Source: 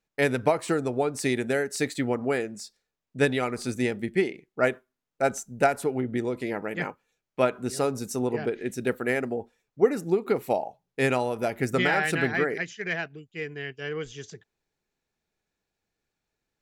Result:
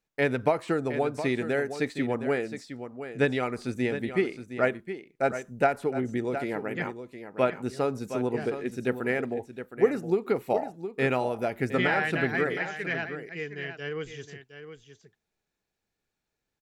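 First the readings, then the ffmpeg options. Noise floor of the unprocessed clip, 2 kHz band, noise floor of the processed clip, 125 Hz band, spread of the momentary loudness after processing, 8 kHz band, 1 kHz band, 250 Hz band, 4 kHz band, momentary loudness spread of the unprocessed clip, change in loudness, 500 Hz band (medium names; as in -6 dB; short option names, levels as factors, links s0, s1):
under -85 dBFS, -1.5 dB, -84 dBFS, -1.0 dB, 12 LU, under -10 dB, -1.0 dB, -1.0 dB, -3.5 dB, 11 LU, -1.5 dB, -1.0 dB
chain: -filter_complex "[0:a]acrossover=split=4000[s0][s1];[s1]acompressor=threshold=0.00282:ratio=4:attack=1:release=60[s2];[s0][s2]amix=inputs=2:normalize=0,aecho=1:1:715:0.299,volume=0.841"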